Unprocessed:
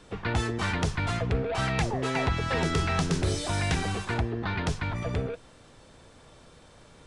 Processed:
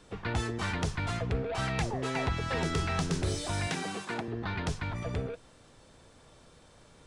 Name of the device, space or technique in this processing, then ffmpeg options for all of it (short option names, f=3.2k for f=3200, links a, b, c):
exciter from parts: -filter_complex "[0:a]asplit=2[a][b];[b]highpass=3.6k,asoftclip=type=tanh:threshold=-38.5dB,volume=-11dB[c];[a][c]amix=inputs=2:normalize=0,asettb=1/sr,asplit=3[d][e][f];[d]atrim=end=3.674[g];[e]atrim=start=3.67:end=4.28,asetpts=PTS-STARTPTS,afade=t=in:d=0.004:c=qsin,afade=t=out:st=0.606:d=0.004:c=qsin,highpass=f=160:w=0.5412,highpass=f=160:w=1.3066[h];[f]atrim=start=4.276[i];[g][h]acrossfade=d=0.004:c1=hsin:c2=qsin[j];[j][i]acrossfade=d=0.004:c1=qsin:c2=hsin,volume=-4dB"